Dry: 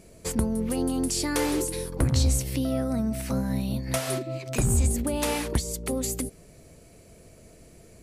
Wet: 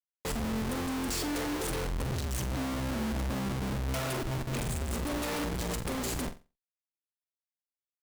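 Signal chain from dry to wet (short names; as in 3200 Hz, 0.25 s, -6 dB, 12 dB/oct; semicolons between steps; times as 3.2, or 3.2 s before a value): Schmitt trigger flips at -32.5 dBFS; flutter echo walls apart 7.7 m, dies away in 0.28 s; gain -5.5 dB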